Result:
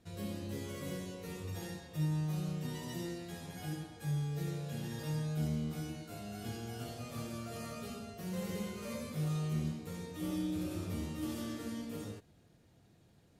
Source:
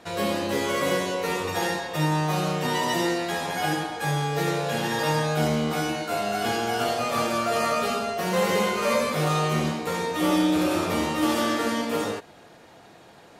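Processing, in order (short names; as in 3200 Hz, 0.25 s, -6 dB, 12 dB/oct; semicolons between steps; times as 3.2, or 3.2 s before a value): EQ curve 100 Hz 0 dB, 880 Hz -24 dB, 12000 Hz -11 dB; gain -2.5 dB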